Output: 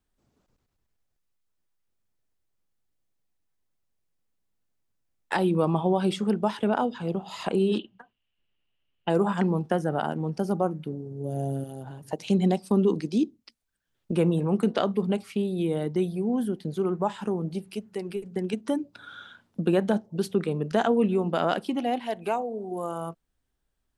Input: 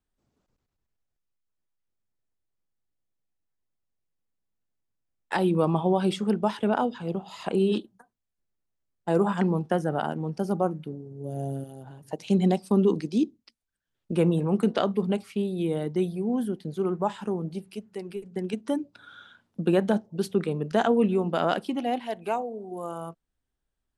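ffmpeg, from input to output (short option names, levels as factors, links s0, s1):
-filter_complex "[0:a]asplit=2[s0][s1];[s1]acompressor=threshold=0.0224:ratio=6,volume=1.19[s2];[s0][s2]amix=inputs=2:normalize=0,asettb=1/sr,asplit=3[s3][s4][s5];[s3]atrim=end=7.794[s6];[s4]atrim=start=7.79:end=9.1,asetpts=PTS-STARTPTS,afade=t=in:d=0.004:c=qsin,afade=t=out:st=1.306:d=0.004:c=qsin,lowpass=f=2900:t=q:w=11[s7];[s5]atrim=start=9.096[s8];[s6][s7]acrossfade=d=0.004:c1=hsin:c2=qsin[s9];[s9][s8]acrossfade=d=0.004:c1=qsin:c2=hsin,volume=0.75"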